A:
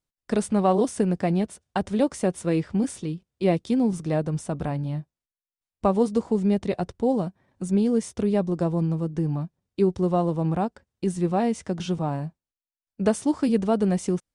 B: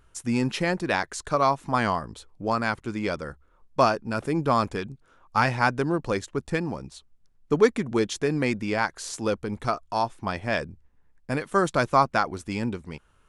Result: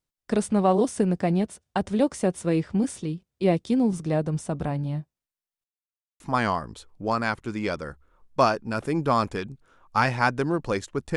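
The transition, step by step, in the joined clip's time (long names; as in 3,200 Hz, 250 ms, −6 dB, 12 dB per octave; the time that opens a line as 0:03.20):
A
0:05.64–0:06.20: silence
0:06.20: continue with B from 0:01.60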